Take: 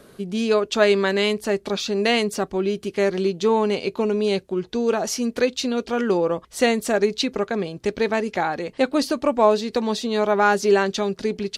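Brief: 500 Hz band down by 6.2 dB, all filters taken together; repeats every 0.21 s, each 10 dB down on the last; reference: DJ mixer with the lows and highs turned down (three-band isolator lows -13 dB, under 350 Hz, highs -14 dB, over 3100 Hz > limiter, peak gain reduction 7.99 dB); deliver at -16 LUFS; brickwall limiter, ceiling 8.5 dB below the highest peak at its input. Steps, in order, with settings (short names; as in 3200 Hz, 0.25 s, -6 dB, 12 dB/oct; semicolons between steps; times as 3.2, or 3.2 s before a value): bell 500 Hz -5.5 dB; limiter -16 dBFS; three-band isolator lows -13 dB, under 350 Hz, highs -14 dB, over 3100 Hz; feedback echo 0.21 s, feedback 32%, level -10 dB; gain +16 dB; limiter -5.5 dBFS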